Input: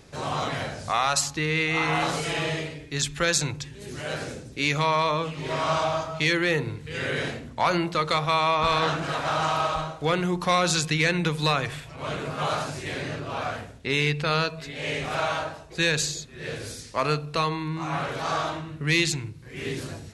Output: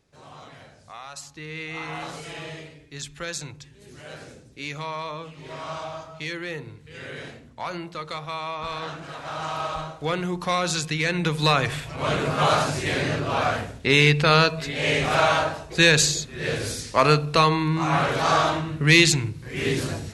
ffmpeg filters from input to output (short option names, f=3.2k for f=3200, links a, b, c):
-af "volume=7dB,afade=t=in:st=1.11:d=0.58:silence=0.421697,afade=t=in:st=9.19:d=0.67:silence=0.446684,afade=t=in:st=11.04:d=0.93:silence=0.354813"